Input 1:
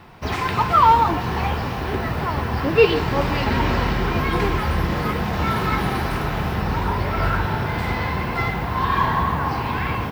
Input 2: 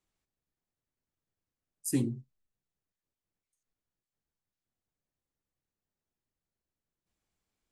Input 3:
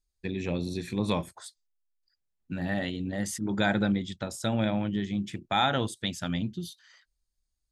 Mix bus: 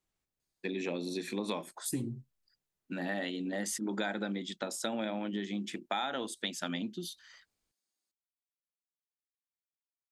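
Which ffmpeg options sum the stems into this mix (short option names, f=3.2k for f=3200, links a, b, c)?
-filter_complex "[1:a]volume=-1dB[a];[2:a]highpass=f=230:w=0.5412,highpass=f=230:w=1.3066,adelay=400,volume=1dB[b];[a][b]amix=inputs=2:normalize=0,acompressor=threshold=-31dB:ratio=6"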